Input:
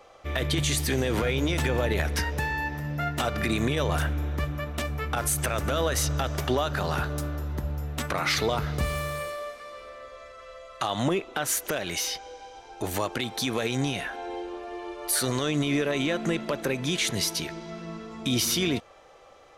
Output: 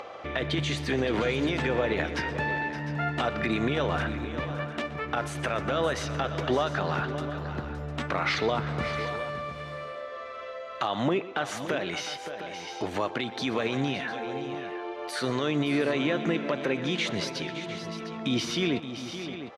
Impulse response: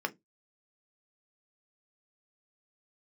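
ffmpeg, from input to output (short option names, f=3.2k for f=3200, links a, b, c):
-filter_complex "[0:a]highpass=140,lowpass=3.4k,asplit=2[a][b];[b]aecho=0:1:122|568|704:0.133|0.251|0.2[c];[a][c]amix=inputs=2:normalize=0,acompressor=mode=upward:threshold=-31dB:ratio=2.5"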